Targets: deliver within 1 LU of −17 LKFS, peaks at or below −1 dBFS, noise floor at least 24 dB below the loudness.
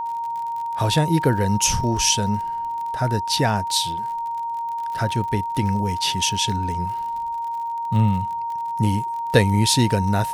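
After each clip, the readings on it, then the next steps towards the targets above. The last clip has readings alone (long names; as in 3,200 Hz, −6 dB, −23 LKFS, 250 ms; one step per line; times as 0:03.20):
crackle rate 56 per second; interfering tone 930 Hz; level of the tone −24 dBFS; integrated loudness −22.0 LKFS; sample peak −2.0 dBFS; target loudness −17.0 LKFS
→ click removal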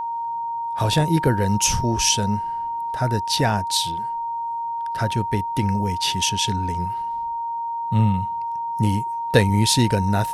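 crackle rate 1.1 per second; interfering tone 930 Hz; level of the tone −24 dBFS
→ notch filter 930 Hz, Q 30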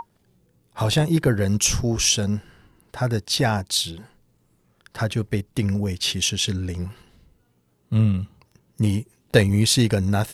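interfering tone none found; integrated loudness −22.0 LKFS; sample peak −2.5 dBFS; target loudness −17.0 LKFS
→ level +5 dB
brickwall limiter −1 dBFS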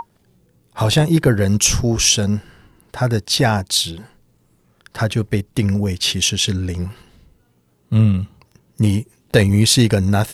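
integrated loudness −17.0 LKFS; sample peak −1.0 dBFS; background noise floor −60 dBFS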